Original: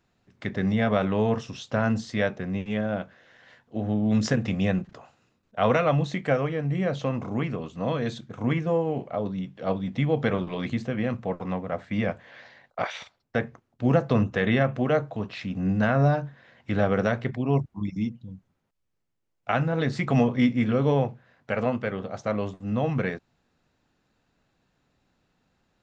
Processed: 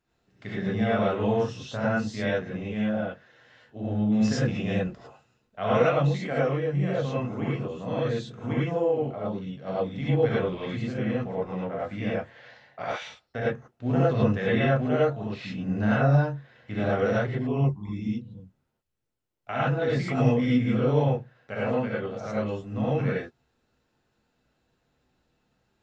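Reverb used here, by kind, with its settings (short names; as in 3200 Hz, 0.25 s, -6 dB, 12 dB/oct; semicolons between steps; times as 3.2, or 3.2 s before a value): non-linear reverb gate 0.13 s rising, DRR -7.5 dB; gain -9.5 dB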